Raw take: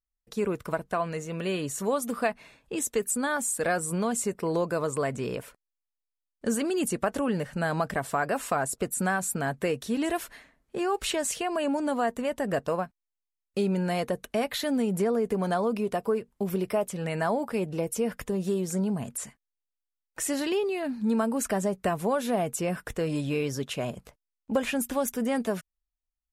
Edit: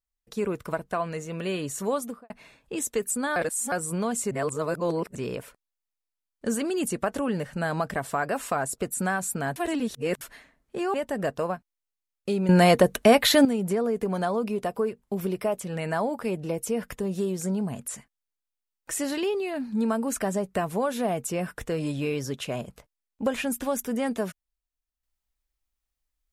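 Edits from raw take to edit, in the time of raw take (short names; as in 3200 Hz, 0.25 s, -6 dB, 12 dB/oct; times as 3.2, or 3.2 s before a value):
1.96–2.3 studio fade out
3.36–3.72 reverse
4.31–5.15 reverse
9.56–10.21 reverse
10.94–12.23 cut
13.78–14.74 gain +11 dB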